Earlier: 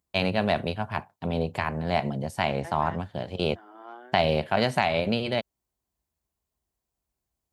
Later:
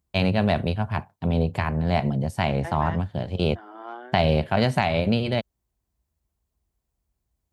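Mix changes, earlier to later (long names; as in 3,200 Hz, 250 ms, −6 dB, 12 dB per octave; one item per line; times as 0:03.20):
first voice: add low-shelf EQ 180 Hz +12 dB
second voice +6.0 dB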